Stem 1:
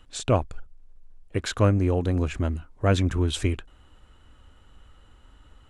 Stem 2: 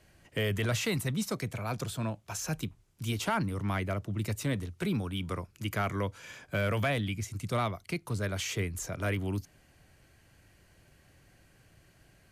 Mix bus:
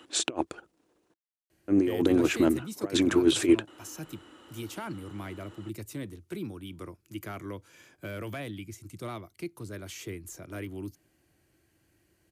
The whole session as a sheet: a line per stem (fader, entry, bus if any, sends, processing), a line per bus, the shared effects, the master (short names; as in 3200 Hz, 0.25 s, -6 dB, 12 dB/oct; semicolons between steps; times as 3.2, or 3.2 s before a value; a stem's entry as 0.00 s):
+2.0 dB, 0.00 s, muted 1.14–1.68, no send, HPF 270 Hz 12 dB/oct; negative-ratio compressor -31 dBFS, ratio -0.5
-9.5 dB, 1.50 s, no send, high shelf 9500 Hz +10 dB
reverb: off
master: HPF 51 Hz; bell 330 Hz +13.5 dB 0.42 oct